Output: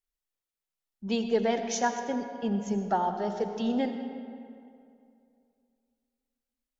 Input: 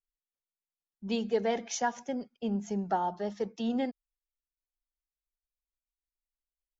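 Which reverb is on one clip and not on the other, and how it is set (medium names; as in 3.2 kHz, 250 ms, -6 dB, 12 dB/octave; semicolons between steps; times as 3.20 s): algorithmic reverb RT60 2.5 s, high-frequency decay 0.6×, pre-delay 45 ms, DRR 7 dB; trim +2.5 dB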